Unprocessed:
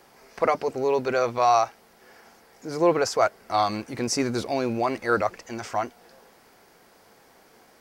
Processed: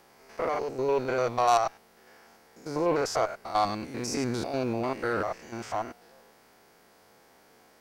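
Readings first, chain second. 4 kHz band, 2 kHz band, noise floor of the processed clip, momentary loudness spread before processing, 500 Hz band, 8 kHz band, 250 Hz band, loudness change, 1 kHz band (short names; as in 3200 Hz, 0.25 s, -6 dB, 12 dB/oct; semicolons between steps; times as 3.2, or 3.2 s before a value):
-4.5 dB, -5.0 dB, -60 dBFS, 10 LU, -4.5 dB, -4.5 dB, -4.0 dB, -4.0 dB, -4.0 dB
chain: stepped spectrum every 0.1 s; added harmonics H 3 -16 dB, 5 -25 dB, 8 -30 dB, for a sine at -8 dBFS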